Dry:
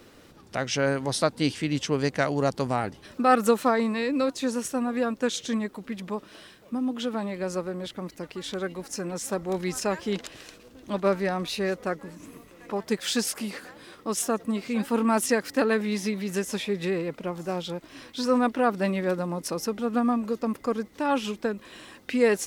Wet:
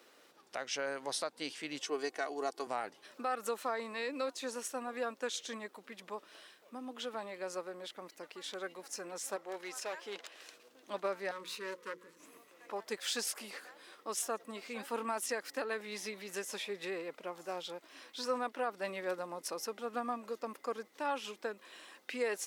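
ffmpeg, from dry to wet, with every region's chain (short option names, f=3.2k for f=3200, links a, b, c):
-filter_complex "[0:a]asettb=1/sr,asplit=3[a][b][c];[a]atrim=end=1.824[d];[b]atrim=start=1.82:end=2.67,asetpts=PTS-STARTPTS,afade=t=in:d=0.004:c=qsin,afade=t=out:st=0.846:d=0.004:c=qsin,highpass=220,equalizer=f=2.6k:t=o:w=2.7:g=-4,aecho=1:1:2.7:0.67,atrim=end_sample=37485[e];[c]atrim=start=2.666[f];[d][e]acrossfade=d=0.004:c1=hsin:c2=qsin[g];[g][f]acrossfade=d=0.004:c1=qsin:c2=hsin,asettb=1/sr,asplit=3[h][i][j];[h]atrim=end=9.364[k];[i]atrim=start=9.36:end=10.41,asetpts=PTS-STARTPTS,afade=t=in:d=0.004:c=qsin,afade=t=out:st=1.046:d=0.004:c=qsin,bass=f=250:g=-12,treble=f=4k:g=-4,asoftclip=type=hard:threshold=-26dB[l];[j]atrim=start=10.406[m];[k][l]acrossfade=d=0.004:c1=hsin:c2=qsin[n];[n][m]acrossfade=d=0.004:c1=qsin:c2=hsin,asettb=1/sr,asplit=3[o][p][q];[o]atrim=end=11.314[r];[p]atrim=start=11.31:end=12.19,asetpts=PTS-STARTPTS,afade=t=in:d=0.004:c=qsin,afade=t=out:st=0.876:d=0.004:c=qsin,aeval=exprs='if(lt(val(0),0),0.251*val(0),val(0))':c=same,asuperstop=centerf=720:order=20:qfactor=2.1,bandreject=f=60:t=h:w=6,bandreject=f=120:t=h:w=6,bandreject=f=180:t=h:w=6,bandreject=f=240:t=h:w=6,bandreject=f=300:t=h:w=6,bandreject=f=360:t=h:w=6,bandreject=f=420:t=h:w=6[s];[q]atrim=start=12.186[t];[r][s]acrossfade=d=0.004:c1=hsin:c2=qsin[u];[u][t]acrossfade=d=0.004:c1=qsin:c2=hsin,highpass=490,alimiter=limit=-17.5dB:level=0:latency=1:release=250,volume=-7dB"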